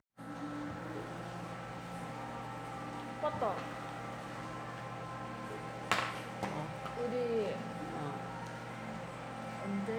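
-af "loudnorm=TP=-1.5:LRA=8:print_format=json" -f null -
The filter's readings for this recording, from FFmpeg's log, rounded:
"input_i" : "-40.3",
"input_tp" : "-11.0",
"input_lra" : "2.9",
"input_thresh" : "-50.3",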